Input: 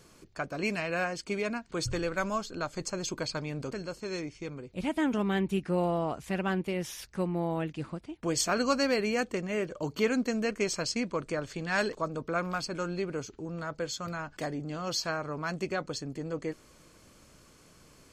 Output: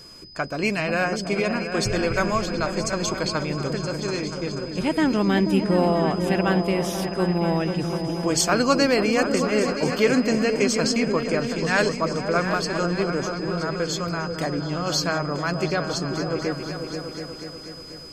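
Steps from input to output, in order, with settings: whistle 5 kHz -51 dBFS; delay with an opening low-pass 243 ms, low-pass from 200 Hz, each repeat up 2 oct, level -3 dB; trim +7.5 dB

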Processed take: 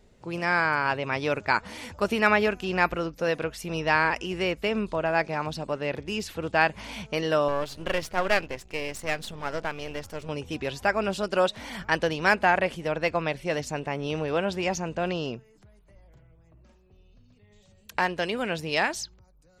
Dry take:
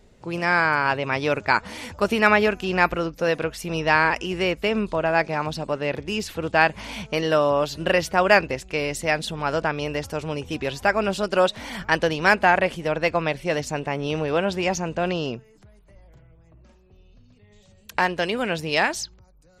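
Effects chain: 7.48–10.29 s: partial rectifier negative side -12 dB; trim -4 dB

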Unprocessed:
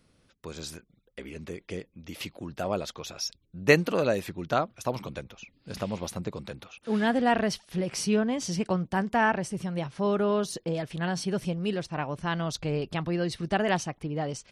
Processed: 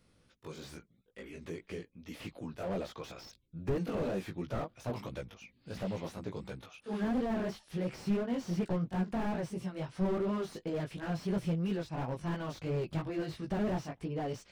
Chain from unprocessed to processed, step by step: sawtooth pitch modulation -1 st, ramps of 935 ms; chorus 2.9 Hz, delay 15.5 ms, depth 3.4 ms; slew-rate limiter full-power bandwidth 13 Hz

